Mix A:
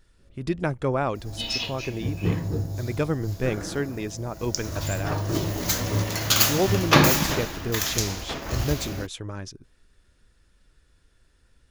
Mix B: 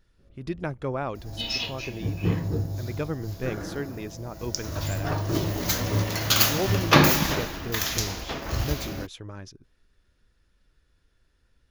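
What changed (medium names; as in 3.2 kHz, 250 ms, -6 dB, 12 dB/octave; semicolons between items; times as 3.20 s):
speech -5.0 dB; master: add peaking EQ 8.3 kHz -9 dB 0.43 oct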